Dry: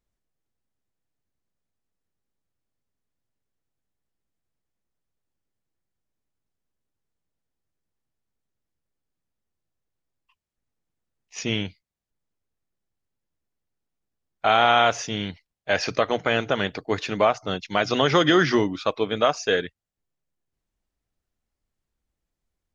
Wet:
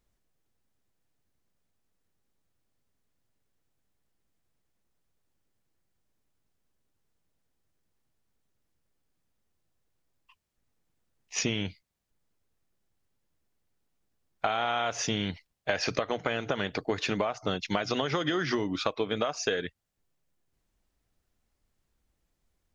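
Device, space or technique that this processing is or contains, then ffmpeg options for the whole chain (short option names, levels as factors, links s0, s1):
serial compression, leveller first: -af "acompressor=threshold=0.0794:ratio=3,acompressor=threshold=0.0282:ratio=6,volume=1.88"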